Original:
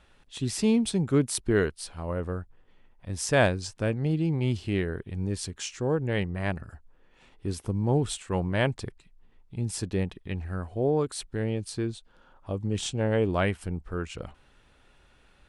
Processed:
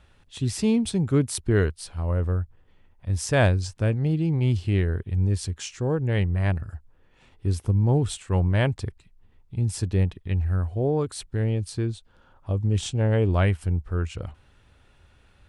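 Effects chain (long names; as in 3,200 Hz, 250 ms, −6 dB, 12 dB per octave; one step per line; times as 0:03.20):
parametric band 86 Hz +11.5 dB 1.1 octaves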